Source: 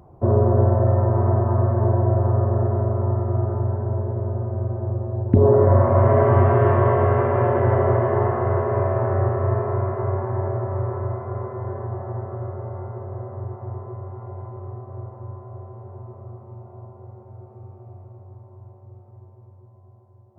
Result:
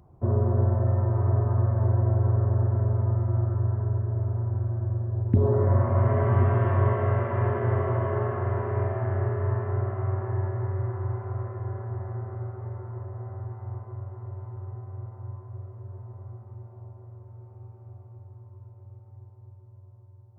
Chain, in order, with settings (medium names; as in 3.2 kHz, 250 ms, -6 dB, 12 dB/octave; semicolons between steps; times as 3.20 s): peaking EQ 590 Hz -7.5 dB 2.1 oct; echo that smears into a reverb 1059 ms, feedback 42%, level -9 dB; trim -4 dB